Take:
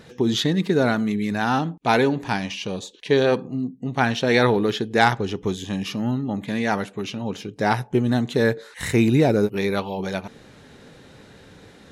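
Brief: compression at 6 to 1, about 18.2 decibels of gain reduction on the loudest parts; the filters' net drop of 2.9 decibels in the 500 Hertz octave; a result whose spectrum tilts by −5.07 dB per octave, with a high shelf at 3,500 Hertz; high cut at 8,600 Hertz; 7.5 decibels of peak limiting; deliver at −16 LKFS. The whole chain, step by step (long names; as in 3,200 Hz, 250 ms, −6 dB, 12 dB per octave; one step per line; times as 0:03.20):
low-pass filter 8,600 Hz
parametric band 500 Hz −3.5 dB
high-shelf EQ 3,500 Hz −7 dB
downward compressor 6 to 1, threshold −35 dBFS
level +24 dB
brickwall limiter −4.5 dBFS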